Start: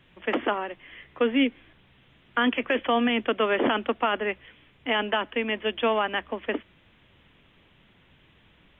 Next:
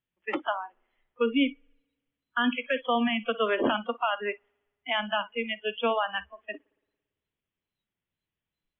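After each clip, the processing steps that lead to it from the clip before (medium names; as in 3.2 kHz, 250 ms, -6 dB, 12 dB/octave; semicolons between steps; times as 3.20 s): wow and flutter 28 cents; spring tank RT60 1.5 s, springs 56 ms, chirp 60 ms, DRR 11 dB; spectral noise reduction 30 dB; trim -2 dB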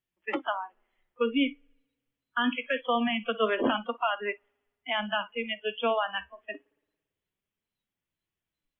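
flange 0.24 Hz, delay 2.6 ms, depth 5.7 ms, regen +73%; trim +3.5 dB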